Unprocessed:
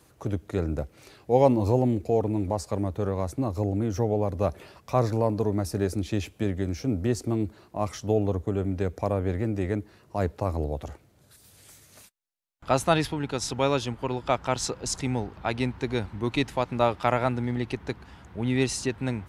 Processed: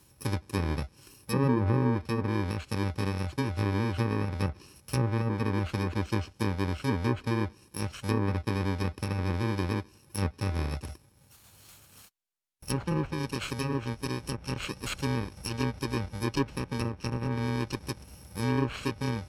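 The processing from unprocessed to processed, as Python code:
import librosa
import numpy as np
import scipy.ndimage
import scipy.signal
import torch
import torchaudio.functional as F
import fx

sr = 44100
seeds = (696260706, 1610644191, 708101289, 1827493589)

y = fx.bit_reversed(x, sr, seeds[0], block=64)
y = fx.env_lowpass_down(y, sr, base_hz=1200.0, full_db=-18.5)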